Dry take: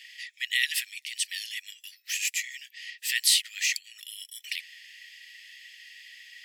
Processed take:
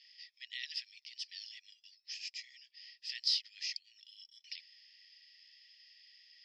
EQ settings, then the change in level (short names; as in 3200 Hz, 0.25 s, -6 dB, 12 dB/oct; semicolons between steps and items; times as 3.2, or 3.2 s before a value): band-pass 5100 Hz, Q 12; air absorption 240 m; +11.0 dB